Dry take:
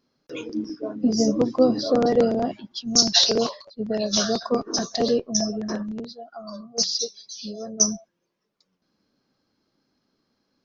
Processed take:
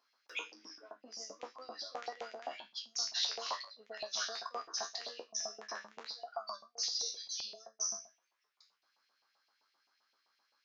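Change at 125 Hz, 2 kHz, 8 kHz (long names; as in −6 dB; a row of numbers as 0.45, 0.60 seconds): below −40 dB, −7.5 dB, can't be measured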